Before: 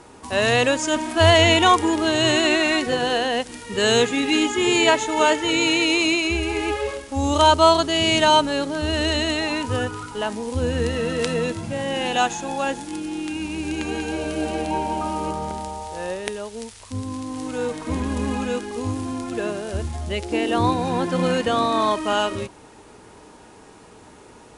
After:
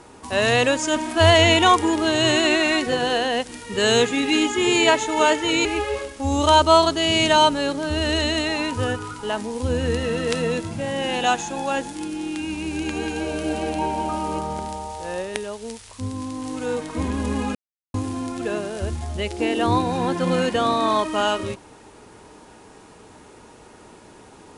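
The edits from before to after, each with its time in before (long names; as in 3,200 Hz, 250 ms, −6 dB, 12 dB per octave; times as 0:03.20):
0:05.65–0:06.57: remove
0:18.47–0:18.86: silence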